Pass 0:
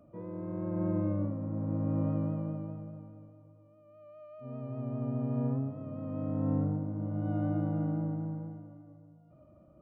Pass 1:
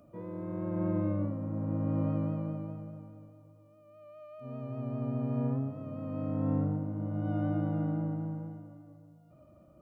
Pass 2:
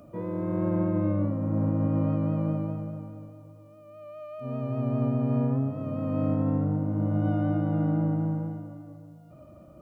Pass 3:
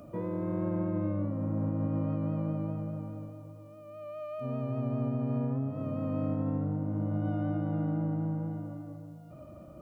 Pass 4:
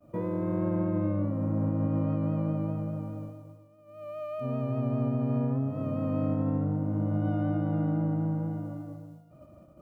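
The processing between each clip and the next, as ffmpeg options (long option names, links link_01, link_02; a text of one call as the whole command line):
ffmpeg -i in.wav -af "highshelf=frequency=2100:gain=9" out.wav
ffmpeg -i in.wav -af "alimiter=level_in=1dB:limit=-24dB:level=0:latency=1:release=350,volume=-1dB,volume=8.5dB" out.wav
ffmpeg -i in.wav -af "acompressor=threshold=-35dB:ratio=2,volume=1.5dB" out.wav
ffmpeg -i in.wav -af "agate=range=-33dB:threshold=-41dB:ratio=3:detection=peak,volume=3dB" out.wav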